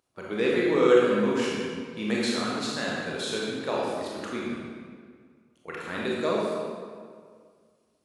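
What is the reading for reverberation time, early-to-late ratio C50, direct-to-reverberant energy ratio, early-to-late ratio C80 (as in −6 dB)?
2.0 s, −2.5 dB, −5.0 dB, 0.0 dB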